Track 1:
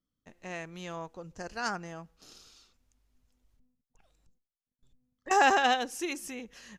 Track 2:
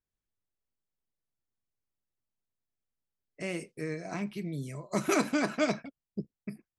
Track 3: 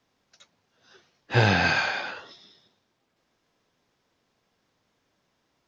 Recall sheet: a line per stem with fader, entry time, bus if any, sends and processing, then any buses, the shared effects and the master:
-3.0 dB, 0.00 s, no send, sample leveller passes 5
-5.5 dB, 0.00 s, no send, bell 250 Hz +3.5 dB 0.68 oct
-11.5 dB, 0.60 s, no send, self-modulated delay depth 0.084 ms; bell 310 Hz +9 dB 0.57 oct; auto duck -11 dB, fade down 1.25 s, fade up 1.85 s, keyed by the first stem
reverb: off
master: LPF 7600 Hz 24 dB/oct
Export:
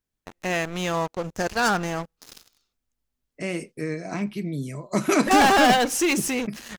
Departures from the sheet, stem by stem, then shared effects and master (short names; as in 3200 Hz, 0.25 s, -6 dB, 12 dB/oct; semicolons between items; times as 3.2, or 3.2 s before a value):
stem 2 -5.5 dB -> +5.5 dB; stem 3: muted; master: missing LPF 7600 Hz 24 dB/oct